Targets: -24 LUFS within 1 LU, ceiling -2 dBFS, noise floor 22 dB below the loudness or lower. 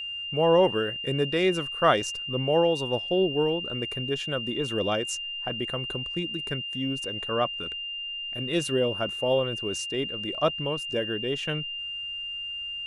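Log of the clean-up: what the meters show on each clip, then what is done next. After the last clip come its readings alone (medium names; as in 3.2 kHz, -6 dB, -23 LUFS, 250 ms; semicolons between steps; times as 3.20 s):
steady tone 2.8 kHz; tone level -32 dBFS; loudness -27.0 LUFS; peak level -7.5 dBFS; loudness target -24.0 LUFS
-> band-stop 2.8 kHz, Q 30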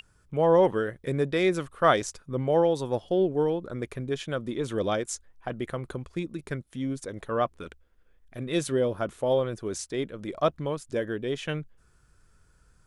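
steady tone not found; loudness -28.0 LUFS; peak level -7.5 dBFS; loudness target -24.0 LUFS
-> trim +4 dB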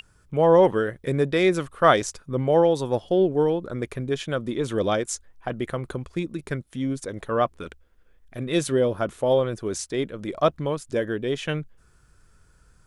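loudness -24.5 LUFS; peak level -3.5 dBFS; noise floor -59 dBFS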